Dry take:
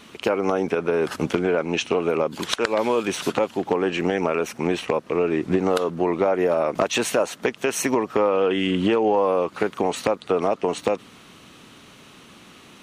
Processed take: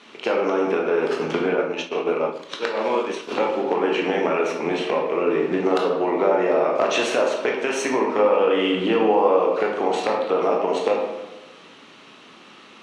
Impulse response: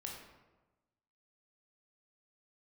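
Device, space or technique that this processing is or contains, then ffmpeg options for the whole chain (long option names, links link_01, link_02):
supermarket ceiling speaker: -filter_complex "[0:a]highpass=290,lowpass=5400[link_01];[1:a]atrim=start_sample=2205[link_02];[link_01][link_02]afir=irnorm=-1:irlink=0,asplit=3[link_03][link_04][link_05];[link_03]afade=type=out:start_time=1.54:duration=0.02[link_06];[link_04]agate=range=-33dB:threshold=-21dB:ratio=3:detection=peak,afade=type=in:start_time=1.54:duration=0.02,afade=type=out:start_time=3.3:duration=0.02[link_07];[link_05]afade=type=in:start_time=3.3:duration=0.02[link_08];[link_06][link_07][link_08]amix=inputs=3:normalize=0,volume=4.5dB"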